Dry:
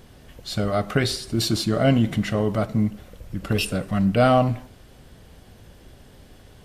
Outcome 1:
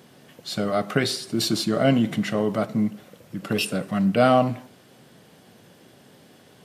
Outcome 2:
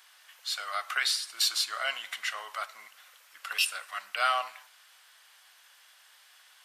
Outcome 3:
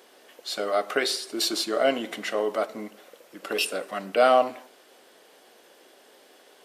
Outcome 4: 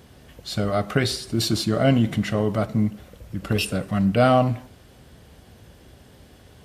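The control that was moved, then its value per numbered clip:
HPF, cutoff: 140, 1100, 360, 49 Hz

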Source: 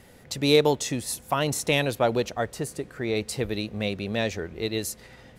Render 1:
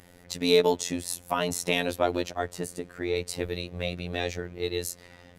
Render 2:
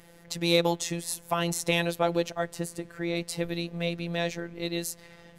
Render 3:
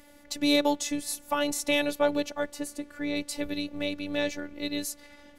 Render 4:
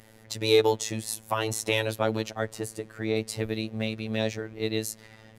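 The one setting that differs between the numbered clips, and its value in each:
robotiser, frequency: 88, 170, 290, 110 Hz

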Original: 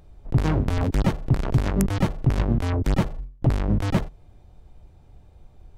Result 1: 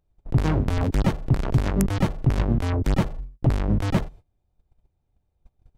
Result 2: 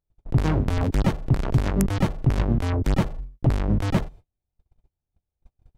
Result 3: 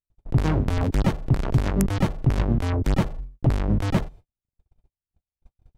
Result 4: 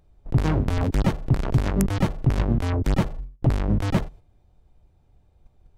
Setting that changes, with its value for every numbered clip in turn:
gate, range: -22, -35, -49, -9 dB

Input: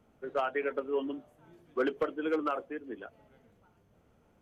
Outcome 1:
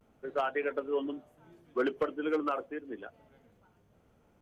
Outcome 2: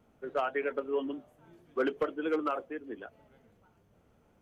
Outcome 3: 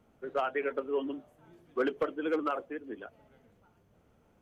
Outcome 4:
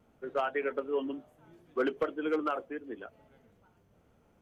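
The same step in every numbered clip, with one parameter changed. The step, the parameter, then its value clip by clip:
vibrato, rate: 0.36, 6.3, 16, 2.5 Hz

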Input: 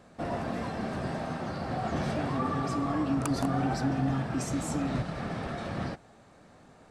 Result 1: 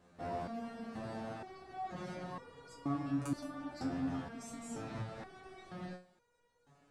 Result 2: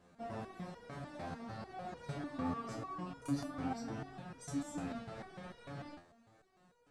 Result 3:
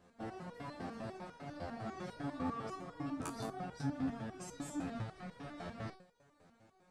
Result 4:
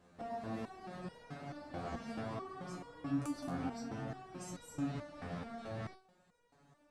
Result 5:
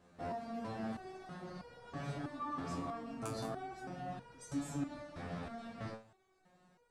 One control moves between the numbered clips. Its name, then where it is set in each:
stepped resonator, rate: 2.1, 6.7, 10, 4.6, 3.1 Hz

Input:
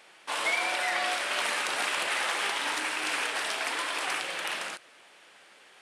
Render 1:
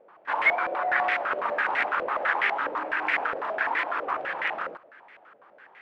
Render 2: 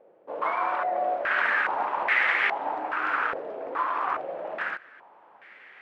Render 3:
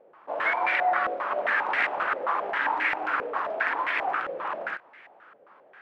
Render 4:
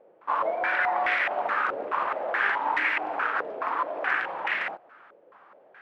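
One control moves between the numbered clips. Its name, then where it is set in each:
stepped low-pass, rate: 12, 2.4, 7.5, 4.7 Hz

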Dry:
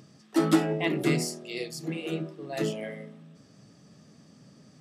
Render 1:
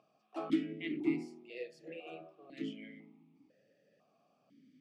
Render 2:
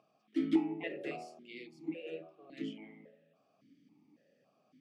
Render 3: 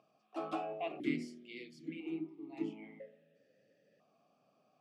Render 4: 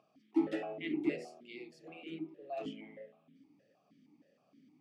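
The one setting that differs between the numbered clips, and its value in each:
vowel sequencer, rate: 2, 3.6, 1, 6.4 Hz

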